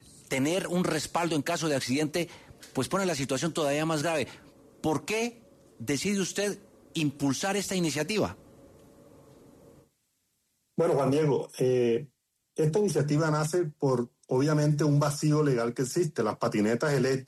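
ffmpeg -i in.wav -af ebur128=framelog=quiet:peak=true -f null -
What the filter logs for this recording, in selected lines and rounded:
Integrated loudness:
  I:         -28.2 LUFS
  Threshold: -39.0 LUFS
Loudness range:
  LRA:         5.3 LU
  Threshold: -49.4 LUFS
  LRA low:   -32.1 LUFS
  LRA high:  -26.9 LUFS
True peak:
  Peak:      -14.2 dBFS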